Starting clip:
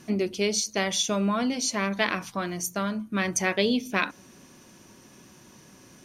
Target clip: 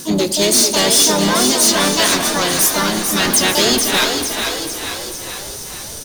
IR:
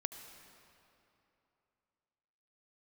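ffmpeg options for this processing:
-filter_complex "[0:a]asubboost=boost=11:cutoff=59,asplit=3[a][b][c];[b]asetrate=37084,aresample=44100,atempo=1.18921,volume=-7dB[d];[c]asetrate=66075,aresample=44100,atempo=0.66742,volume=-3dB[e];[a][d][e]amix=inputs=3:normalize=0,aexciter=amount=2:drive=9.2:freq=3.4k,asoftclip=type=tanh:threshold=-20dB,asplit=9[f][g][h][i][j][k][l][m][n];[g]adelay=445,afreqshift=41,volume=-6dB[o];[h]adelay=890,afreqshift=82,volume=-10.7dB[p];[i]adelay=1335,afreqshift=123,volume=-15.5dB[q];[j]adelay=1780,afreqshift=164,volume=-20.2dB[r];[k]adelay=2225,afreqshift=205,volume=-24.9dB[s];[l]adelay=2670,afreqshift=246,volume=-29.7dB[t];[m]adelay=3115,afreqshift=287,volume=-34.4dB[u];[n]adelay=3560,afreqshift=328,volume=-39.1dB[v];[f][o][p][q][r][s][t][u][v]amix=inputs=9:normalize=0,asplit=2[w][x];[1:a]atrim=start_sample=2205[y];[x][y]afir=irnorm=-1:irlink=0,volume=3.5dB[z];[w][z]amix=inputs=2:normalize=0,volume=3dB"

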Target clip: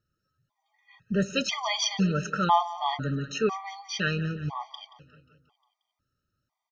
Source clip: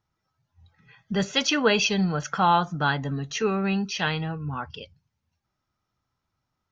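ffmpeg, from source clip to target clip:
-af "aecho=1:1:178|356|534|712|890|1068:0.15|0.0883|0.0521|0.0307|0.0181|0.0107,afftfilt=real='re*gt(sin(2*PI*1*pts/sr)*(1-2*mod(floor(b*sr/1024/620),2)),0)':imag='im*gt(sin(2*PI*1*pts/sr)*(1-2*mod(floor(b*sr/1024/620),2)),0)':win_size=1024:overlap=0.75"

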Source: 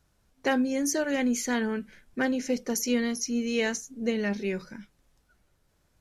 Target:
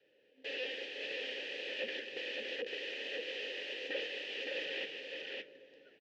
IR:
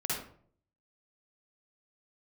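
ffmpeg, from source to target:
-filter_complex "[0:a]adynamicequalizer=threshold=0.00891:dfrequency=250:dqfactor=2.9:tfrequency=250:tqfactor=2.9:attack=5:release=100:ratio=0.375:range=1.5:mode=cutabove:tftype=bell,asplit=2[a][b];[b]acompressor=threshold=-39dB:ratio=12,volume=1dB[c];[a][c]amix=inputs=2:normalize=0,alimiter=limit=-20.5dB:level=0:latency=1:release=13,dynaudnorm=f=160:g=9:m=13dB,aeval=exprs='(mod(33.5*val(0)+1,2)-1)/33.5':c=same,asplit=3[d][e][f];[d]bandpass=f=530:t=q:w=8,volume=0dB[g];[e]bandpass=f=1.84k:t=q:w=8,volume=-6dB[h];[f]bandpass=f=2.48k:t=q:w=8,volume=-9dB[i];[g][h][i]amix=inputs=3:normalize=0,highpass=170,equalizer=f=190:t=q:w=4:g=-7,equalizer=f=280:t=q:w=4:g=7,equalizer=f=420:t=q:w=4:g=7,equalizer=f=660:t=q:w=4:g=-9,equalizer=f=1.4k:t=q:w=4:g=-8,equalizer=f=3k:t=q:w=4:g=8,lowpass=f=5k:w=0.5412,lowpass=f=5k:w=1.3066,asplit=2[j][k];[k]aecho=0:1:563:0.668[l];[j][l]amix=inputs=2:normalize=0,volume=8.5dB"

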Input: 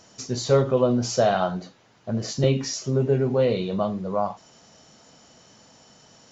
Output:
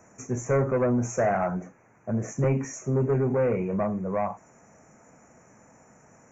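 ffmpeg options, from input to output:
-filter_complex "[0:a]highshelf=f=5.5k:g=-6,acrossover=split=110|2200[a][b][c];[b]asoftclip=type=tanh:threshold=-19dB[d];[a][d][c]amix=inputs=3:normalize=0,asuperstop=centerf=3900:order=12:qfactor=1.1"

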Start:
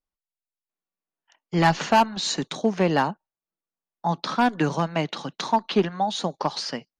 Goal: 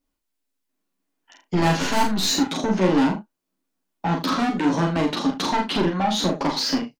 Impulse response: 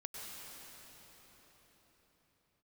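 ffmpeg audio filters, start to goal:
-filter_complex "[0:a]equalizer=f=270:t=o:w=0.59:g=15,asplit=2[a][b];[b]acompressor=threshold=-30dB:ratio=6,volume=2dB[c];[a][c]amix=inputs=2:normalize=0,asettb=1/sr,asplit=3[d][e][f];[d]atrim=end=1.754[g];[e]atrim=start=1.75:end=2.26,asetpts=PTS-STARTPTS,afade=t=in:d=0.004:c=qsin,afade=t=out:st=0.506:d=0.004:c=qsin,aeval=exprs='0.398*(cos(1*acos(clip(val(0)/0.398,-1,1)))-cos(1*PI/2))+0.126*(cos(4*acos(clip(val(0)/0.398,-1,1)))-cos(4*PI/2))':c=same[h];[f]atrim=start=2.256[i];[g][h]acrossfade=d=0.004:c1=hsin:c2=qsin[j];[j][i]acrossfade=d=0.004:c1=qsin:c2=hsin,asoftclip=type=tanh:threshold=-19.5dB,asplit=2[k][l];[l]adelay=38,volume=-7dB[m];[k][m]amix=inputs=2:normalize=0,aecho=1:1:11|47|80:0.668|0.631|0.133"

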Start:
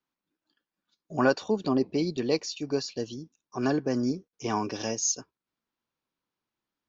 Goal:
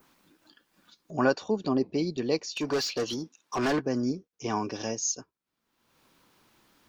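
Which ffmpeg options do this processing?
-filter_complex "[0:a]adynamicequalizer=threshold=0.00708:dfrequency=3600:dqfactor=0.84:tfrequency=3600:tqfactor=0.84:attack=5:release=100:ratio=0.375:range=2:mode=cutabove:tftype=bell,acompressor=mode=upward:threshold=-42dB:ratio=2.5,asplit=3[a][b][c];[a]afade=t=out:st=2.55:d=0.02[d];[b]asplit=2[e][f];[f]highpass=f=720:p=1,volume=22dB,asoftclip=type=tanh:threshold=-19.5dB[g];[e][g]amix=inputs=2:normalize=0,lowpass=f=4.8k:p=1,volume=-6dB,afade=t=in:st=2.55:d=0.02,afade=t=out:st=3.8:d=0.02[h];[c]afade=t=in:st=3.8:d=0.02[i];[d][h][i]amix=inputs=3:normalize=0,volume=-1dB"

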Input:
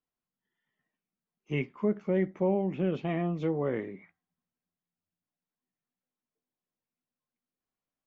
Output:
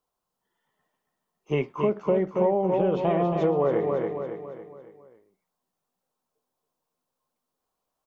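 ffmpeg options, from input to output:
-filter_complex "[0:a]equalizer=f=125:t=o:w=1:g=-3,equalizer=f=250:t=o:w=1:g=-6,equalizer=f=500:t=o:w=1:g=5,equalizer=f=1k:t=o:w=1:g=8,equalizer=f=2k:t=o:w=1:g=-8,asplit=2[a][b];[b]aecho=0:1:277|554|831|1108|1385:0.473|0.218|0.1|0.0461|0.0212[c];[a][c]amix=inputs=2:normalize=0,acompressor=threshold=-27dB:ratio=6,volume=8dB"

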